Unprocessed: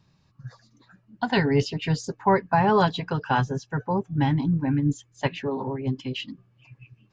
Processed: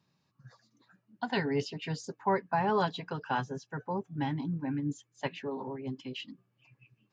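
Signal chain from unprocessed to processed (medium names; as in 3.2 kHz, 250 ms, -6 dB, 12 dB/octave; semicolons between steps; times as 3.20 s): high-pass 170 Hz 12 dB/octave; trim -8 dB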